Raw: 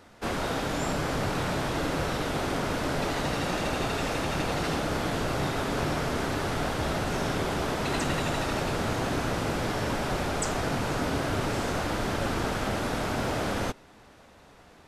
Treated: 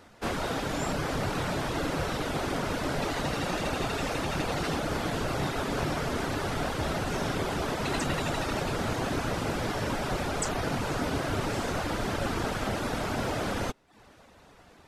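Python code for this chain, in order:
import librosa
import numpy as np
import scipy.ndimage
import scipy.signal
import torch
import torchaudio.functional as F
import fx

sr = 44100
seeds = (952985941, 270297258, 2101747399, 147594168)

y = fx.dereverb_blind(x, sr, rt60_s=0.53)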